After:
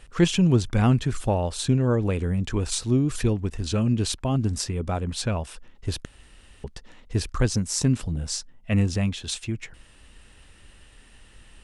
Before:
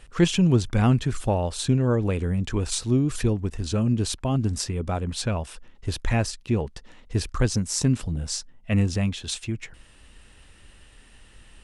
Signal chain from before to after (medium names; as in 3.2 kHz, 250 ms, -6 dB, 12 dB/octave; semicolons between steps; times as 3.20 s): 3.23–4.12 s: dynamic bell 2.7 kHz, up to +4 dB, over -45 dBFS, Q 0.93; 6.05–6.64 s: room tone